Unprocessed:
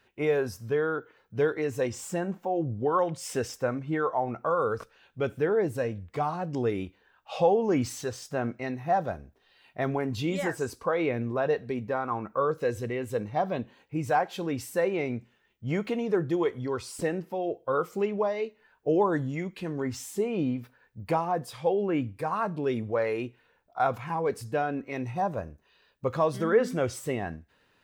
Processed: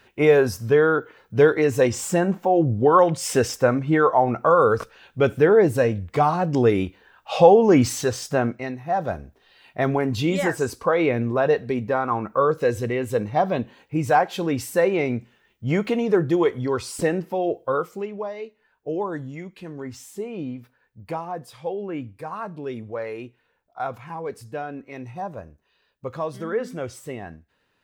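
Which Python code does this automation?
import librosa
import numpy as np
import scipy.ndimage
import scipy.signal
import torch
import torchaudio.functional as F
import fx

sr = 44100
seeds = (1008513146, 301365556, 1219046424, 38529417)

y = fx.gain(x, sr, db=fx.line((8.32, 10.0), (8.85, -0.5), (9.14, 7.0), (17.6, 7.0), (18.06, -3.0)))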